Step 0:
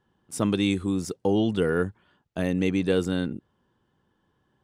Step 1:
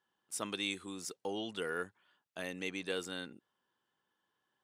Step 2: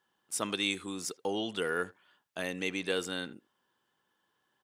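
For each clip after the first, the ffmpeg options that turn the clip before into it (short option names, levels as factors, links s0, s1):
-af "highpass=f=1500:p=1,volume=0.631"
-filter_complex "[0:a]asplit=2[s0][s1];[s1]adelay=80,highpass=300,lowpass=3400,asoftclip=type=hard:threshold=0.0266,volume=0.1[s2];[s0][s2]amix=inputs=2:normalize=0,volume=1.88"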